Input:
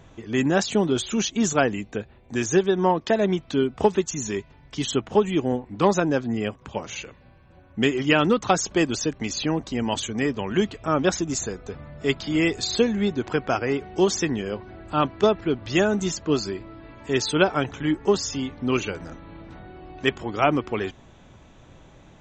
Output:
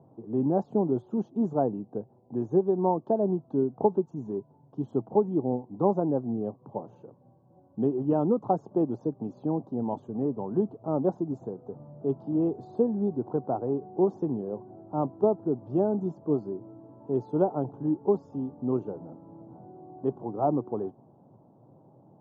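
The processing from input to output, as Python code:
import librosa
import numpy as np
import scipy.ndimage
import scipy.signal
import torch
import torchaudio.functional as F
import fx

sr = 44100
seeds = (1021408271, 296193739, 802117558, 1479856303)

y = scipy.signal.sosfilt(scipy.signal.ellip(3, 1.0, 40, [120.0, 870.0], 'bandpass', fs=sr, output='sos'), x)
y = y * librosa.db_to_amplitude(-3.5)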